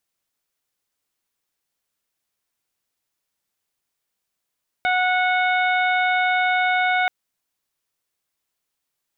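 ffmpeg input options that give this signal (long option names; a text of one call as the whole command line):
ffmpeg -f lavfi -i "aevalsrc='0.1*sin(2*PI*734*t)+0.0794*sin(2*PI*1468*t)+0.0708*sin(2*PI*2202*t)+0.0126*sin(2*PI*2936*t)+0.0251*sin(2*PI*3670*t)':duration=2.23:sample_rate=44100" out.wav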